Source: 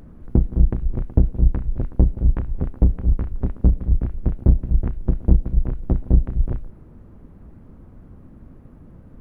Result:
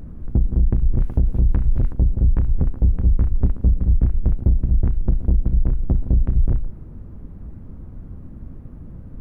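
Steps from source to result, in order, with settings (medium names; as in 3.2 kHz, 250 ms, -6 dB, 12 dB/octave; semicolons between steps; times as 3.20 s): bass shelf 210 Hz +9.5 dB; peak limiter -9 dBFS, peak gain reduction 14 dB; 1.00–1.93 s: tape noise reduction on one side only encoder only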